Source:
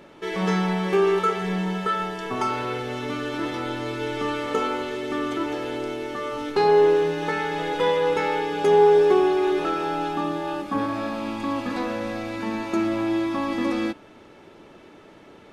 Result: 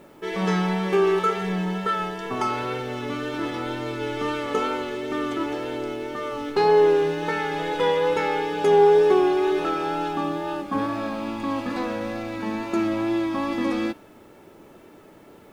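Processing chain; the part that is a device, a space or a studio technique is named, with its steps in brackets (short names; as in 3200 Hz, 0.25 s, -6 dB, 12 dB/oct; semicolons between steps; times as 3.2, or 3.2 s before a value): plain cassette with noise reduction switched in (mismatched tape noise reduction decoder only; wow and flutter 26 cents; white noise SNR 42 dB)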